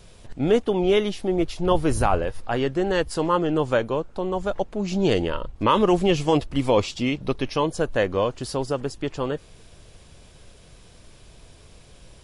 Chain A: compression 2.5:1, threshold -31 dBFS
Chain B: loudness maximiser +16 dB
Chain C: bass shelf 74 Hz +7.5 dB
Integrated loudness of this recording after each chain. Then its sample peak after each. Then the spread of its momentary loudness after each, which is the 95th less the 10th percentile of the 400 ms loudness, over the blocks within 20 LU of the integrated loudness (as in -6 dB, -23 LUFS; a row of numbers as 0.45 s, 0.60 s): -32.5 LUFS, -12.0 LUFS, -23.0 LUFS; -16.5 dBFS, -1.0 dBFS, -5.0 dBFS; 20 LU, 5 LU, 8 LU